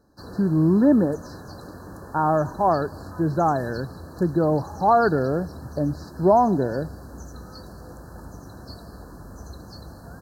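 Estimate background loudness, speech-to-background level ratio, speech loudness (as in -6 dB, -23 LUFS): -41.0 LUFS, 19.0 dB, -22.0 LUFS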